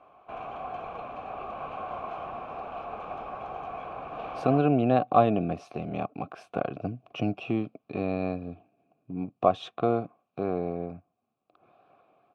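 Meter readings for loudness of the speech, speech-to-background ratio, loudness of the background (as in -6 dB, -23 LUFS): -28.5 LUFS, 9.5 dB, -38.0 LUFS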